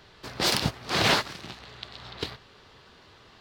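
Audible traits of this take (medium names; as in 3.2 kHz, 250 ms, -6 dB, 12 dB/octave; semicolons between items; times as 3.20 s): noise floor -55 dBFS; spectral tilt -3.0 dB/octave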